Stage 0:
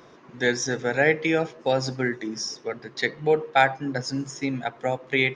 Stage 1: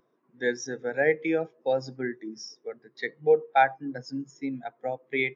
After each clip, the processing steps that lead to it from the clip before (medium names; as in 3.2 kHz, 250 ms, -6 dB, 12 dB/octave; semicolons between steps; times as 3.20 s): high-pass 130 Hz; spectral contrast expander 1.5:1; trim -2.5 dB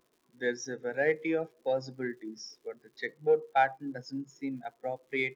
in parallel at -11.5 dB: saturation -23 dBFS, distortion -8 dB; on the sum: crackle 200 per s -51 dBFS; trim -5.5 dB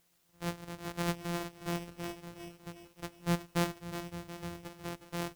sorted samples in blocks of 256 samples; added noise white -67 dBFS; bit-crushed delay 363 ms, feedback 55%, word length 9-bit, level -10 dB; trim -6 dB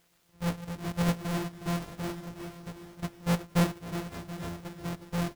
square wave that keeps the level; delay 833 ms -17.5 dB